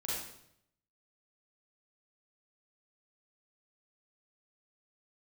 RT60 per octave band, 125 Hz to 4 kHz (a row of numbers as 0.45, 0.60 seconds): 1.0, 0.80, 0.80, 0.70, 0.65, 0.65 seconds